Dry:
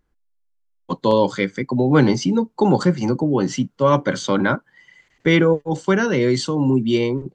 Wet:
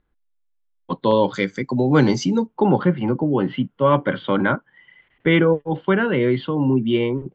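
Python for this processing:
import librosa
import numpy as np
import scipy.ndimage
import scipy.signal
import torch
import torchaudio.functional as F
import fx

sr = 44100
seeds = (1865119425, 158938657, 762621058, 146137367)

y = fx.ellip_lowpass(x, sr, hz=fx.steps((0.0, 3800.0), (1.33, 7400.0), (2.46, 3300.0)), order=4, stop_db=50)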